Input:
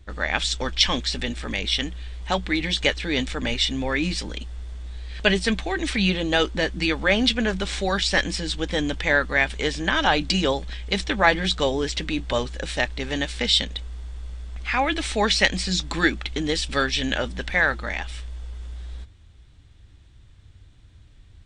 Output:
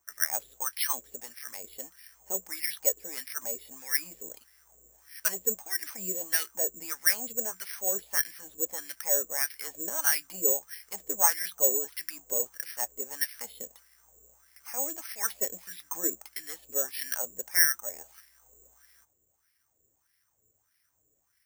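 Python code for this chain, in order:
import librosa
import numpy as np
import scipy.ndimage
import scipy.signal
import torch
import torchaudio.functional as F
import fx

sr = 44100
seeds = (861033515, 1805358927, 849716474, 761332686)

y = fx.wah_lfo(x, sr, hz=1.6, low_hz=430.0, high_hz=2000.0, q=4.3)
y = (np.kron(scipy.signal.resample_poly(y, 1, 6), np.eye(6)[0]) * 6)[:len(y)]
y = y * librosa.db_to_amplitude(-5.0)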